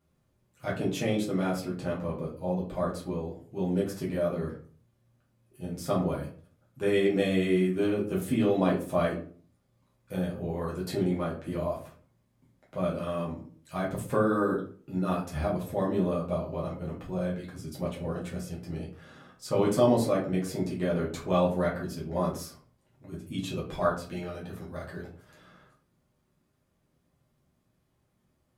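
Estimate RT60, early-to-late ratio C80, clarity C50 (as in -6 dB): 0.45 s, 12.5 dB, 7.5 dB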